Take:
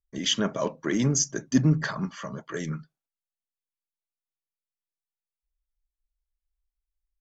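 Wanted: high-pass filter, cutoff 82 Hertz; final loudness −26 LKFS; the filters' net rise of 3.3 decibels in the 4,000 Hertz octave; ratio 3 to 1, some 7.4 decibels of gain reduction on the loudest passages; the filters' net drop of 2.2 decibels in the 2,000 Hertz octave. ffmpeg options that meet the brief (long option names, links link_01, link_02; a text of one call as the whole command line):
ffmpeg -i in.wav -af "highpass=82,equalizer=frequency=2000:width_type=o:gain=-4,equalizer=frequency=4000:width_type=o:gain=6.5,acompressor=threshold=-26dB:ratio=3,volume=5dB" out.wav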